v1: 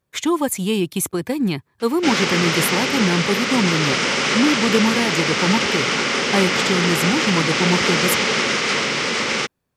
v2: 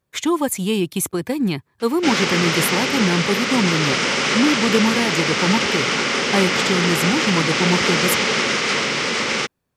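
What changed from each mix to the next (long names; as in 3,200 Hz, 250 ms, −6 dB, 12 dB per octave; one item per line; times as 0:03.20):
nothing changed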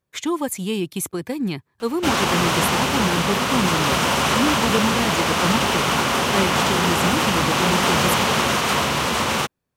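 speech −4.0 dB
background: remove loudspeaker in its box 190–7,600 Hz, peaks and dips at 440 Hz +4 dB, 700 Hz −8 dB, 1,000 Hz −8 dB, 2,100 Hz +7 dB, 5,100 Hz +6 dB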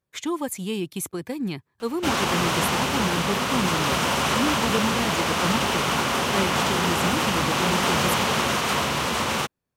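speech −4.0 dB
background −3.5 dB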